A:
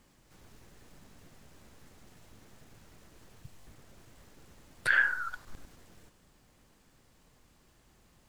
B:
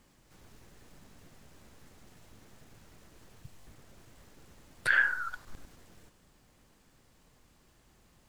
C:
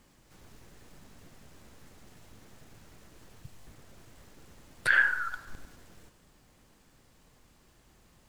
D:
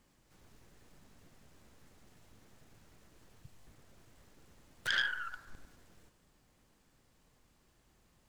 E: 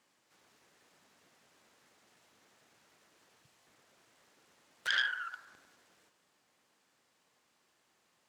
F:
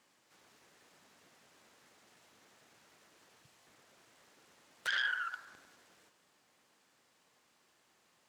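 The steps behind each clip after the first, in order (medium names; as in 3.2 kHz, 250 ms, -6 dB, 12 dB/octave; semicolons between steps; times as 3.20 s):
no audible change
reverberation RT60 1.2 s, pre-delay 71 ms, DRR 17.5 dB; trim +2 dB
self-modulated delay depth 0.18 ms; trim -7.5 dB
frequency weighting A
peak limiter -25.5 dBFS, peak gain reduction 9.5 dB; trim +2.5 dB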